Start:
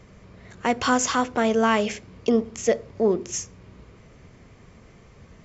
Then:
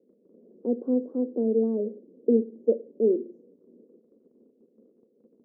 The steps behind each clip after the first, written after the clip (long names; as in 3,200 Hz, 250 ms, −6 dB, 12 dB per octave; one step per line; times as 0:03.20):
elliptic band-pass filter 230–510 Hz, stop band 70 dB
noise gate −56 dBFS, range −7 dB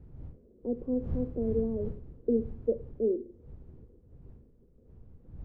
wind on the microphone 92 Hz −36 dBFS
level −6 dB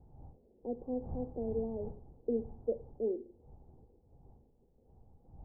low-pass with resonance 810 Hz, resonance Q 8.5
level −8.5 dB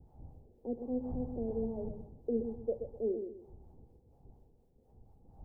two-band tremolo in antiphase 4.2 Hz, crossover 480 Hz
feedback echo with a low-pass in the loop 126 ms, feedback 34%, low-pass 810 Hz, level −6 dB
level +3 dB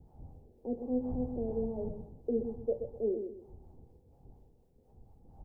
double-tracking delay 24 ms −11 dB
level +1.5 dB